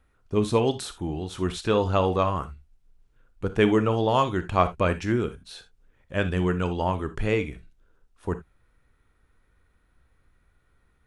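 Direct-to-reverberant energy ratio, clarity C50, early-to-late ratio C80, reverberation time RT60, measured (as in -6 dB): 11.0 dB, 13.5 dB, 22.5 dB, not exponential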